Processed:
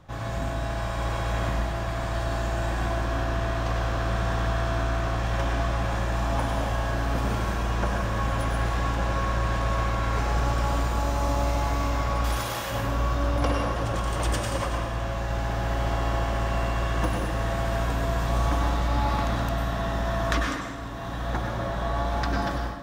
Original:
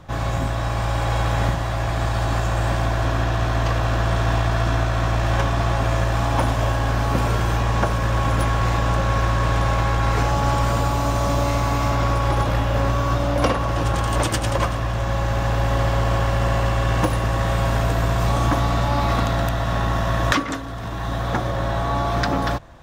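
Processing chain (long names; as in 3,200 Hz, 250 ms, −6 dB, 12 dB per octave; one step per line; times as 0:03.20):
0:12.24–0:12.71: RIAA equalisation recording
convolution reverb RT60 1.1 s, pre-delay 88 ms, DRR 0.5 dB
level −8.5 dB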